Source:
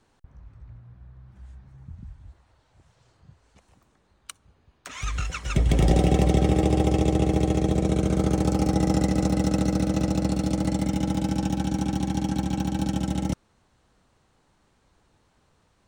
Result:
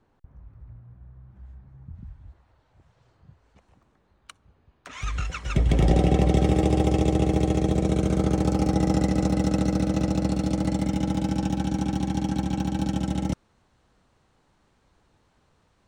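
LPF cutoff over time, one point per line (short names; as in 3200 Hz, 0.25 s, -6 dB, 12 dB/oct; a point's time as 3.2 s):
LPF 6 dB/oct
1200 Hz
from 1.95 s 2400 Hz
from 4.93 s 4300 Hz
from 6.34 s 11000 Hz
from 8.18 s 6600 Hz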